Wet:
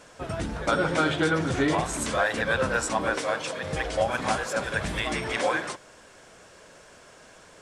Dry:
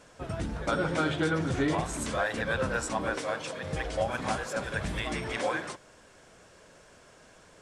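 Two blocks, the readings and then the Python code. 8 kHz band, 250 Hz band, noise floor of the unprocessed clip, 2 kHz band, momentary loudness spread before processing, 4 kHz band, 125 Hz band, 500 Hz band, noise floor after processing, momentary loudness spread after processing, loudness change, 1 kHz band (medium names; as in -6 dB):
+5.5 dB, +3.0 dB, -56 dBFS, +5.5 dB, 7 LU, +5.5 dB, +1.5 dB, +4.5 dB, -52 dBFS, 6 LU, +4.5 dB, +5.0 dB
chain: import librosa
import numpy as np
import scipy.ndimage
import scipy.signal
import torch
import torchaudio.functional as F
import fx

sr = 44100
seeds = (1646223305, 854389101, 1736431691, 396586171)

y = fx.low_shelf(x, sr, hz=280.0, db=-5.0)
y = F.gain(torch.from_numpy(y), 5.5).numpy()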